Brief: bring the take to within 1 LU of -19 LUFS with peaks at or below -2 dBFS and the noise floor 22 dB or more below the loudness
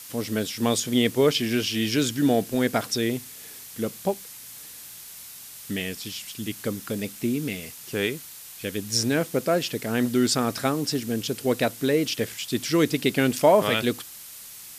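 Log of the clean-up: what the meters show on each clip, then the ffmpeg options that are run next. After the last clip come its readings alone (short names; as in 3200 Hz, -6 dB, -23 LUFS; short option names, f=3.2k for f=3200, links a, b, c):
noise floor -43 dBFS; noise floor target -47 dBFS; loudness -25.0 LUFS; peak -5.5 dBFS; loudness target -19.0 LUFS
-> -af "afftdn=nr=6:nf=-43"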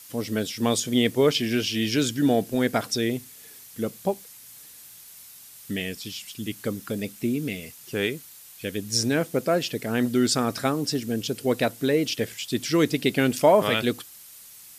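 noise floor -47 dBFS; loudness -25.0 LUFS; peak -5.5 dBFS; loudness target -19.0 LUFS
-> -af "volume=6dB,alimiter=limit=-2dB:level=0:latency=1"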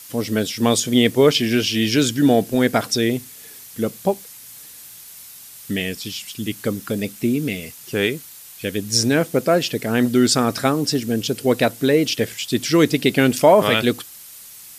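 loudness -19.0 LUFS; peak -2.0 dBFS; noise floor -41 dBFS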